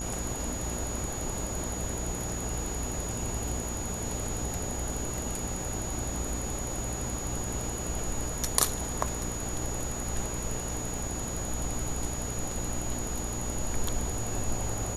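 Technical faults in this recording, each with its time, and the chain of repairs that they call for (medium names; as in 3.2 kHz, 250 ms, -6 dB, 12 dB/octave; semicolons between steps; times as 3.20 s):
buzz 60 Hz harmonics 16 -38 dBFS
whine 6.8 kHz -37 dBFS
10.98 s: dropout 2.8 ms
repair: de-hum 60 Hz, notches 16; band-stop 6.8 kHz, Q 30; interpolate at 10.98 s, 2.8 ms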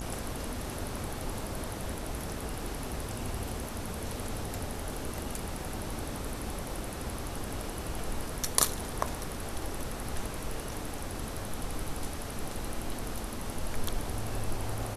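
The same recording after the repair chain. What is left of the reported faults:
nothing left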